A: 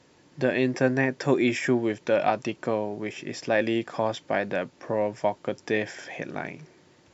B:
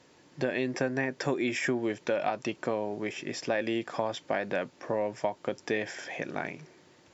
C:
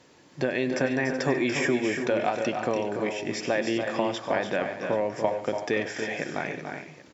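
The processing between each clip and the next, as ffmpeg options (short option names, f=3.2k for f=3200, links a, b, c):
-af "lowshelf=f=190:g=-5.5,acompressor=threshold=-25dB:ratio=6"
-af "aecho=1:1:97|142|288|315|376|781:0.15|0.112|0.422|0.316|0.224|0.112,volume=3dB"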